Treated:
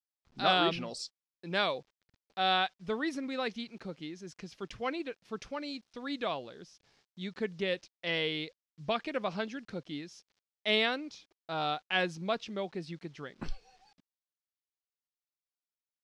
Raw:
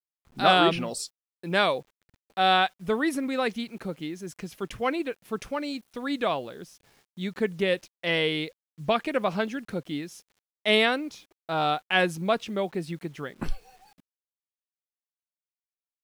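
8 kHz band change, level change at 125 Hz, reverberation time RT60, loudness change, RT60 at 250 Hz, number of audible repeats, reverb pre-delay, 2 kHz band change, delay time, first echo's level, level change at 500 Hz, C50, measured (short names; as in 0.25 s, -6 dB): -10.5 dB, -8.0 dB, none, -7.0 dB, none, none, none, -7.0 dB, none, none, -8.0 dB, none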